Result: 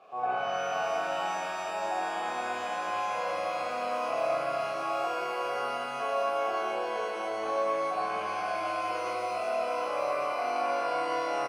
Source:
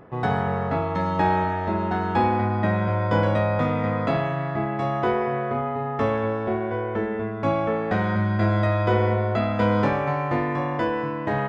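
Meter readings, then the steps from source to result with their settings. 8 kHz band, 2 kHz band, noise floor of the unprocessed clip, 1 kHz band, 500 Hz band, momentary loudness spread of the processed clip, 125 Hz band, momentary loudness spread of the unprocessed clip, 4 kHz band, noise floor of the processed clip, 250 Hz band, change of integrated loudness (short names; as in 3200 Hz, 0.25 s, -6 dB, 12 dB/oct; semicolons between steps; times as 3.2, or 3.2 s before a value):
n/a, -5.5 dB, -28 dBFS, -4.0 dB, -6.5 dB, 3 LU, -32.5 dB, 5 LU, +0.5 dB, -35 dBFS, -20.0 dB, -7.5 dB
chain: rattling part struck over -25 dBFS, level -27 dBFS; HPF 270 Hz 6 dB/oct; limiter -21 dBFS, peak gain reduction 10.5 dB; vocal rider; bit-crush 8-bit; vowel filter a; speakerphone echo 0.27 s, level -16 dB; shimmer reverb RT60 3.1 s, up +12 st, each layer -8 dB, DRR -7.5 dB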